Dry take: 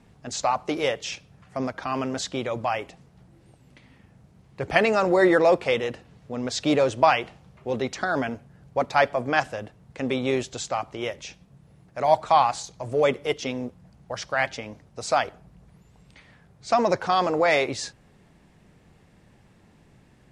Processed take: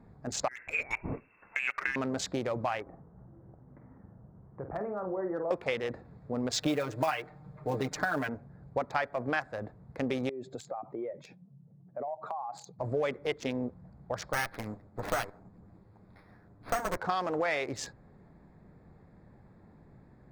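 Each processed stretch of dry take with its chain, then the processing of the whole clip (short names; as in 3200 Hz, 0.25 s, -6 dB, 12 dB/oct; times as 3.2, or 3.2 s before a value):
0.48–1.96 negative-ratio compressor -29 dBFS, ratio -0.5 + inverted band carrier 2800 Hz
2.82–5.51 LPF 1500 Hz 24 dB/oct + compressor 2:1, threshold -43 dBFS + doubler 48 ms -8 dB
6.52–8.29 block floating point 5-bit + comb 6.6 ms, depth 90%
10.29–12.79 spectral contrast raised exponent 1.7 + HPF 140 Hz 24 dB/oct + compressor 12:1, threshold -32 dBFS
14.33–16.97 minimum comb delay 9.9 ms + careless resampling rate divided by 6×, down none, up hold
whole clip: Wiener smoothing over 15 samples; dynamic EQ 1700 Hz, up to +5 dB, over -36 dBFS, Q 1.3; compressor 6:1, threshold -28 dBFS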